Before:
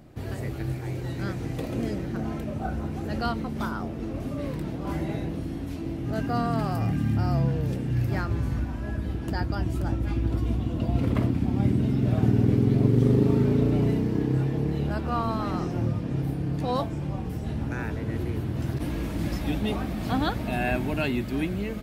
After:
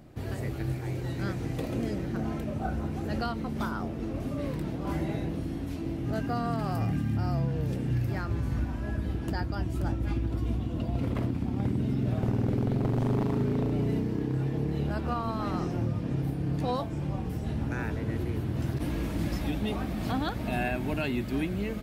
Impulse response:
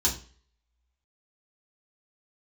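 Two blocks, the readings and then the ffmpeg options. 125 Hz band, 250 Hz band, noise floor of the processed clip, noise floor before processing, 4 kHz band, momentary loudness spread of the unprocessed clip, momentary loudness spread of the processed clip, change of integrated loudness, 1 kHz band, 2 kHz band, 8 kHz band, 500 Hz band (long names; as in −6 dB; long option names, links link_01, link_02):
−4.0 dB, −4.0 dB, −35 dBFS, −33 dBFS, −3.0 dB, 10 LU, 5 LU, −3.5 dB, −3.0 dB, −3.0 dB, can't be measured, −3.5 dB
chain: -af "aeval=exprs='0.398*(cos(1*acos(clip(val(0)/0.398,-1,1)))-cos(1*PI/2))+0.0178*(cos(3*acos(clip(val(0)/0.398,-1,1)))-cos(3*PI/2))':channel_layout=same,aeval=exprs='0.168*(abs(mod(val(0)/0.168+3,4)-2)-1)':channel_layout=same,alimiter=limit=-20dB:level=0:latency=1:release=202"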